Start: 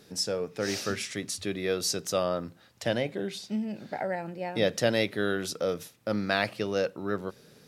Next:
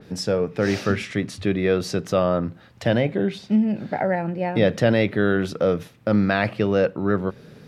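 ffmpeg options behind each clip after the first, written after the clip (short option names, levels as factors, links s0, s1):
-filter_complex "[0:a]bass=f=250:g=6,treble=f=4000:g=-12,asplit=2[s0][s1];[s1]alimiter=limit=0.106:level=0:latency=1:release=25,volume=1.12[s2];[s0][s2]amix=inputs=2:normalize=0,adynamicequalizer=threshold=0.00708:dfrequency=3600:dqfactor=0.7:tfrequency=3600:tqfactor=0.7:attack=5:release=100:ratio=0.375:range=3:mode=cutabove:tftype=highshelf,volume=1.26"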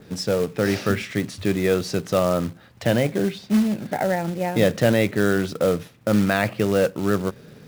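-af "acrusher=bits=4:mode=log:mix=0:aa=0.000001"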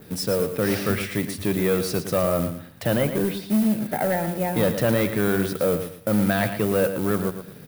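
-filter_complex "[0:a]asoftclip=type=tanh:threshold=0.2,aexciter=amount=1.7:drive=9.8:freq=9000,asplit=2[s0][s1];[s1]aecho=0:1:113|226|339:0.335|0.0904|0.0244[s2];[s0][s2]amix=inputs=2:normalize=0"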